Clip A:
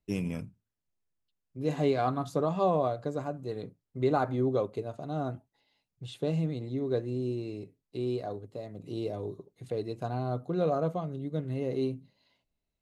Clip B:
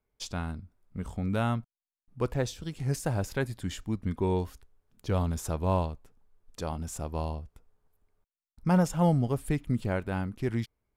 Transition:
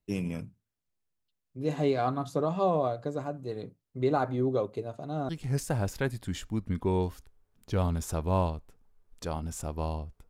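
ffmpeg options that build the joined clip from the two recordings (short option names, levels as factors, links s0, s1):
-filter_complex "[0:a]apad=whole_dur=10.29,atrim=end=10.29,atrim=end=5.292[s0];[1:a]atrim=start=2.648:end=7.65[s1];[s0][s1]acrossfade=d=0.004:c1=hsin:c2=hsin"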